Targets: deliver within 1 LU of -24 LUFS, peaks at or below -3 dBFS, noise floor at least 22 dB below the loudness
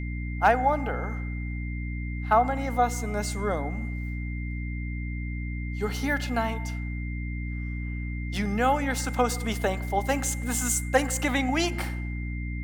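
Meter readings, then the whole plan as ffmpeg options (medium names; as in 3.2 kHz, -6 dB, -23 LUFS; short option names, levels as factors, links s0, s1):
hum 60 Hz; highest harmonic 300 Hz; hum level -29 dBFS; steady tone 2.1 kHz; tone level -41 dBFS; loudness -28.0 LUFS; peak level -9.0 dBFS; loudness target -24.0 LUFS
-> -af "bandreject=f=60:t=h:w=4,bandreject=f=120:t=h:w=4,bandreject=f=180:t=h:w=4,bandreject=f=240:t=h:w=4,bandreject=f=300:t=h:w=4"
-af "bandreject=f=2100:w=30"
-af "volume=1.58"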